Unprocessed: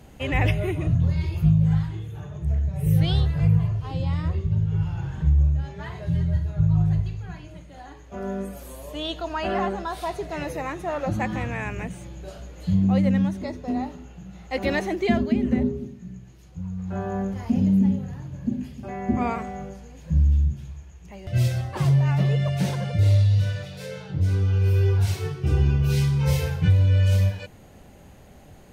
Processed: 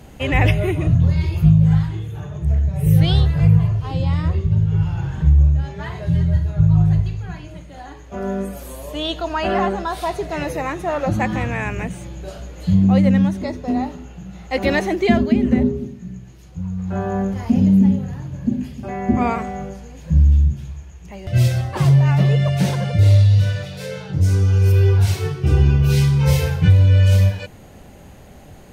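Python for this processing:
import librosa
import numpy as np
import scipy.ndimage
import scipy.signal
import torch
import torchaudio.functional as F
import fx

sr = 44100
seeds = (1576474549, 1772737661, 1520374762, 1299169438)

y = fx.high_shelf_res(x, sr, hz=4800.0, db=6.5, q=1.5, at=(24.13, 24.72))
y = y * 10.0 ** (6.0 / 20.0)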